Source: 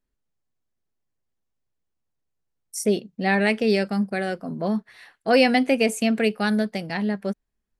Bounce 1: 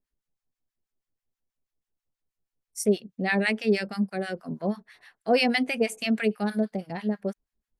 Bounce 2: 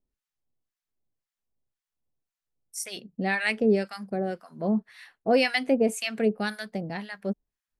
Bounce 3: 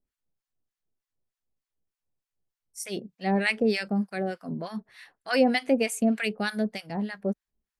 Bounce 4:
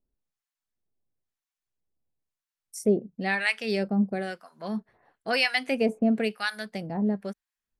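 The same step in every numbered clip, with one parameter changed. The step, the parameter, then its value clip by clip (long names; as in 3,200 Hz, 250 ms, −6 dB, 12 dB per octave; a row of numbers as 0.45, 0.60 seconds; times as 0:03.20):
two-band tremolo in antiphase, speed: 6.2, 1.9, 3.3, 1 Hertz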